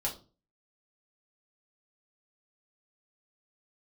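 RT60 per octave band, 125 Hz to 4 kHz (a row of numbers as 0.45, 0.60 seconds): 0.60, 0.45, 0.40, 0.30, 0.25, 0.30 seconds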